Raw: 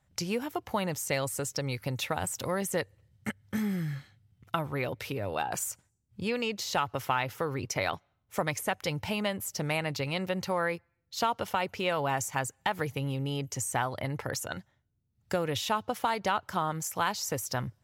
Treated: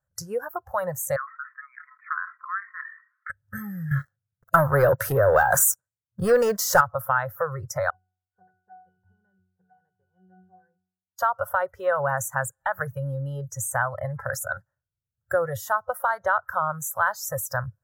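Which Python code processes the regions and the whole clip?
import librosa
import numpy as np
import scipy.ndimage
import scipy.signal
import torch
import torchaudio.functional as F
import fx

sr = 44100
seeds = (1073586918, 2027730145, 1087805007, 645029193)

y = fx.chain(x, sr, fx.brickwall_bandpass(low_hz=1000.0, high_hz=2500.0),
    fx.sustainer(db_per_s=84.0), at=(1.16, 3.3))
y = fx.chain(y, sr, fx.highpass(hz=97.0, slope=12),
    fx.leveller(passes=3), at=(3.91, 6.81))
y = fx.chain(y, sr, fx.gaussian_blur(sigma=2.3),
    fx.octave_resonator(note='F#', decay_s=0.62), at=(7.9, 11.19))
y = fx.curve_eq(y, sr, hz=(140.0, 300.0, 530.0, 790.0, 1600.0, 2300.0, 3800.0, 5500.0, 15000.0), db=(0, -15, 6, -3, 8, -22, -20, -4, 10))
y = fx.noise_reduce_blind(y, sr, reduce_db=16)
y = fx.high_shelf(y, sr, hz=10000.0, db=-4.5)
y = y * librosa.db_to_amplitude(4.0)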